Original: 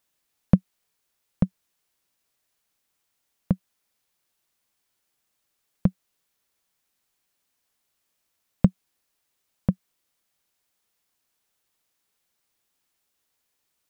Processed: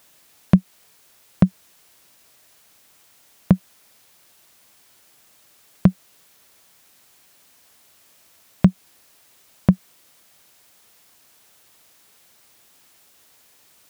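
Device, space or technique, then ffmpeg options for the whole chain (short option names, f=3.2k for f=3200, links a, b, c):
mastering chain: -af "highpass=59,equalizer=f=640:t=o:w=0.27:g=2.5,acompressor=threshold=-19dB:ratio=2,asoftclip=type=tanh:threshold=-9.5dB,alimiter=level_in=22dB:limit=-1dB:release=50:level=0:latency=1,volume=-1dB"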